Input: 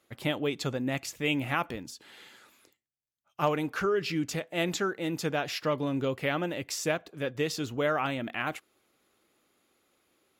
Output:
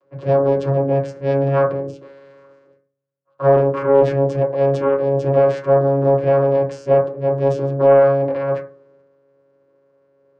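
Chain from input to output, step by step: vocoder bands 8, saw 138 Hz; transient shaper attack -2 dB, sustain +7 dB; high shelf 3900 Hz -9.5 dB; small resonant body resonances 520/1100 Hz, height 16 dB, ringing for 25 ms; reverb RT60 0.40 s, pre-delay 3 ms, DRR -4.5 dB; Doppler distortion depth 0.32 ms

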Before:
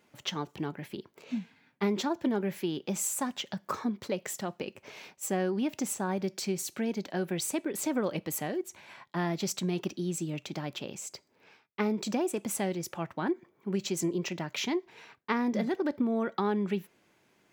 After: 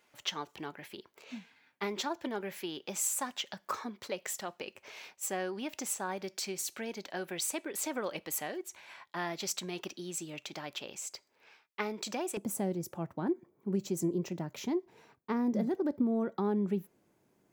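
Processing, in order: bell 150 Hz -13.5 dB 2.7 oct, from 12.37 s 2700 Hz

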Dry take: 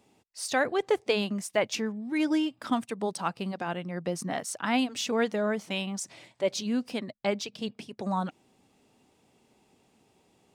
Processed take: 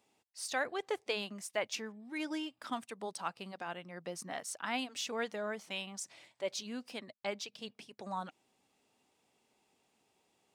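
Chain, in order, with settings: low shelf 390 Hz -11.5 dB; gain -6 dB

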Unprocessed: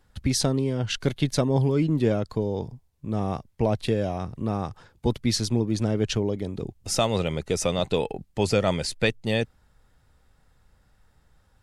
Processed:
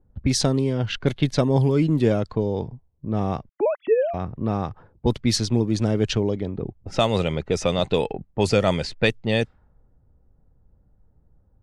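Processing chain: 3.49–4.14 sine-wave speech; low-pass opened by the level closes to 450 Hz, open at -18.5 dBFS; gain +3 dB

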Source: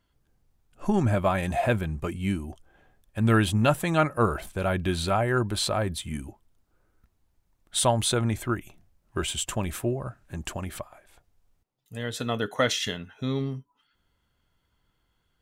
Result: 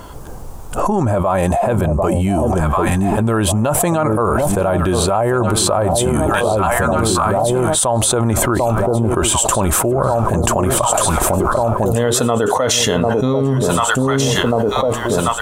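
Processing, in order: ten-band EQ 500 Hz +6 dB, 1000 Hz +9 dB, 2000 Hz -7 dB, 4000 Hz -5 dB, 8000 Hz +5 dB; echo with dull and thin repeats by turns 0.744 s, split 900 Hz, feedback 66%, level -12.5 dB; fast leveller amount 100%; gain -4 dB

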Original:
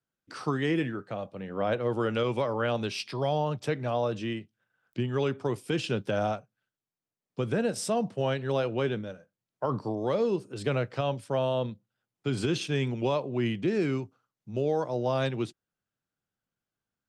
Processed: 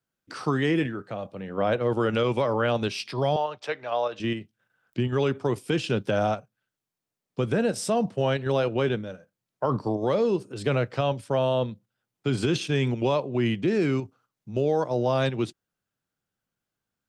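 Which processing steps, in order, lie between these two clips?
3.36–4.2 three-band isolator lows -21 dB, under 470 Hz, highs -15 dB, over 5600 Hz; in parallel at 0 dB: level quantiser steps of 16 dB

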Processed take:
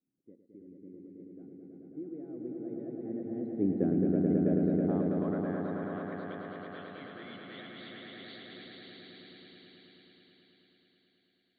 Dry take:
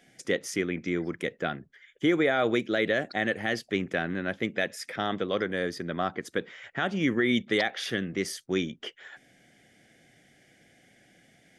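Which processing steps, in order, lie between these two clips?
nonlinear frequency compression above 3600 Hz 4:1; Doppler pass-by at 3.82, 12 m/s, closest 1.8 m; low-pass sweep 290 Hz -> 4200 Hz, 3.75–6.71; swelling echo 0.108 s, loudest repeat 5, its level -3.5 dB

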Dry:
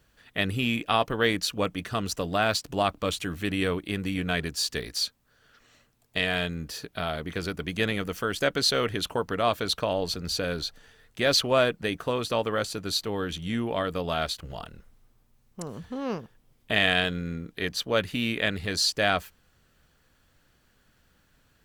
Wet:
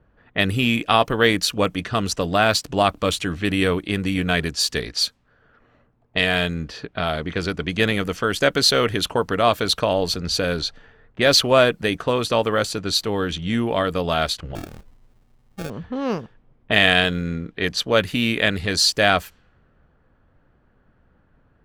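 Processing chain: low-pass opened by the level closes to 1100 Hz, open at -25 dBFS; 14.55–15.7 sample-rate reducer 1000 Hz, jitter 0%; gain +7 dB

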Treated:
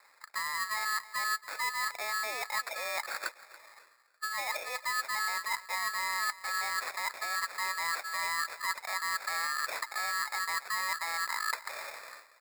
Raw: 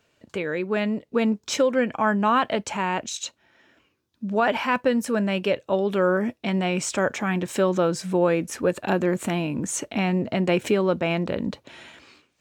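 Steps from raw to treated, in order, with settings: in parallel at +3 dB: limiter -17.5 dBFS, peak gain reduction 9.5 dB; on the sum: sample-and-hold 11×; reverse; compressor 12:1, threshold -30 dBFS, peak gain reduction 19.5 dB; reverse; elliptic low-pass 960 Hz, stop band 40 dB; feedback echo 0.281 s, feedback 28%, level -17.5 dB; polarity switched at an audio rate 1500 Hz

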